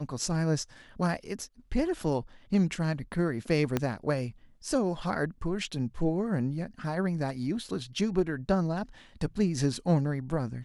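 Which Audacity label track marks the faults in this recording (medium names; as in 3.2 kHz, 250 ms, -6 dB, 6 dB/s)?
3.770000	3.770000	pop -13 dBFS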